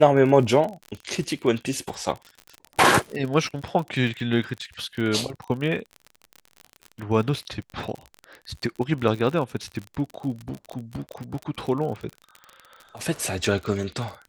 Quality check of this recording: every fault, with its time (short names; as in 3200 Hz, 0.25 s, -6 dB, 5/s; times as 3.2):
crackle 43/s -30 dBFS